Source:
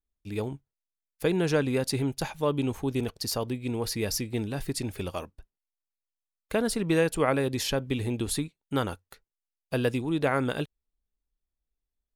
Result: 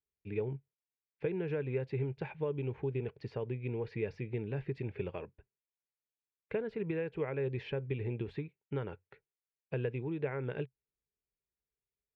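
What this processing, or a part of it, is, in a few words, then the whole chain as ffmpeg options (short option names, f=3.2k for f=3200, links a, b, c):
bass amplifier: -af "acompressor=threshold=-30dB:ratio=5,highpass=85,equalizer=f=130:t=q:w=4:g=7,equalizer=f=260:t=q:w=4:g=-8,equalizer=f=420:t=q:w=4:g=8,equalizer=f=700:t=q:w=4:g=-6,equalizer=f=1.2k:t=q:w=4:g=-9,equalizer=f=2.4k:t=q:w=4:g=5,lowpass=f=2.4k:w=0.5412,lowpass=f=2.4k:w=1.3066,volume=-4dB"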